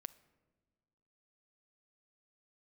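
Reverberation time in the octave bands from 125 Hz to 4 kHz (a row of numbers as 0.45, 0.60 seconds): 1.7, 1.8, 1.6, 1.4, 1.1, 0.75 seconds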